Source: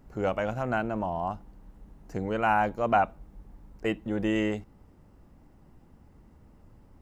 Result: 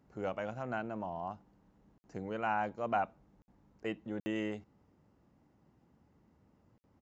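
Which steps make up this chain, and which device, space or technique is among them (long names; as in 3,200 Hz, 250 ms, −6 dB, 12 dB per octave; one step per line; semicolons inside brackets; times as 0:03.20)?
call with lost packets (high-pass filter 100 Hz 12 dB per octave; downsampling to 16,000 Hz; dropped packets of 60 ms)
level −9 dB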